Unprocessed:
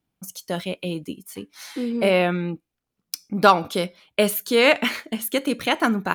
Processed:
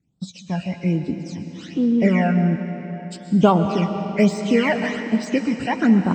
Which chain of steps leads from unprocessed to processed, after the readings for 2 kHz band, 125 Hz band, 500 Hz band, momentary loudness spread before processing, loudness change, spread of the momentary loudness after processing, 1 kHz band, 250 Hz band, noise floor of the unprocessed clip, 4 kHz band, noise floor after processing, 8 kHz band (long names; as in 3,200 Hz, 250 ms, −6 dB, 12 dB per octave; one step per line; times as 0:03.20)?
−3.0 dB, +10.0 dB, −1.0 dB, 19 LU, +1.5 dB, 14 LU, −2.0 dB, +8.0 dB, −82 dBFS, −8.0 dB, −42 dBFS, can't be measured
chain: hearing-aid frequency compression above 1,500 Hz 1.5 to 1
all-pass phaser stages 12, 1.2 Hz, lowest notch 350–2,200 Hz
parametric band 140 Hz +11.5 dB 2.1 octaves
comb and all-pass reverb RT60 3.8 s, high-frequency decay 0.8×, pre-delay 85 ms, DRR 7.5 dB
de-essing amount 75%